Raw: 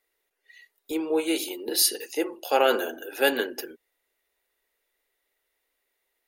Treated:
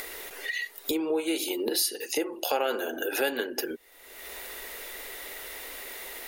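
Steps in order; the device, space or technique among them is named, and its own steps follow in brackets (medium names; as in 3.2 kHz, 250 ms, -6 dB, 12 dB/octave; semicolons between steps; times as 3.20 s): upward and downward compression (upward compressor, threshold -24 dBFS; compression 3:1, threshold -36 dBFS, peak gain reduction 15.5 dB); trim +7.5 dB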